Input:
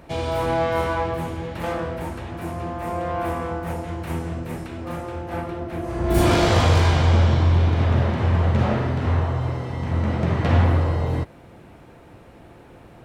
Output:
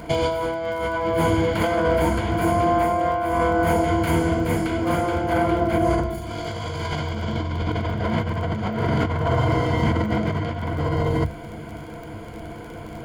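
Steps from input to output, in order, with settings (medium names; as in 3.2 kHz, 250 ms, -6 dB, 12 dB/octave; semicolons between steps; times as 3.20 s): rippled EQ curve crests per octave 1.8, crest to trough 13 dB; compressor with a negative ratio -26 dBFS, ratio -1; crackle 29 per s -37 dBFS; trim +3.5 dB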